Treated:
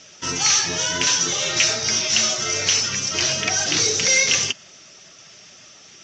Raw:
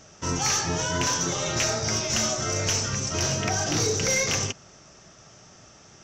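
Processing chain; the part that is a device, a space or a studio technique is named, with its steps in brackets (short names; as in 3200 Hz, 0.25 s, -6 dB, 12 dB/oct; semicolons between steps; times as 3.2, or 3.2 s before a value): clip after many re-uploads (LPF 7900 Hz 24 dB/oct; bin magnitudes rounded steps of 15 dB); 1.73–3.38 LPF 7900 Hz 12 dB/oct; weighting filter D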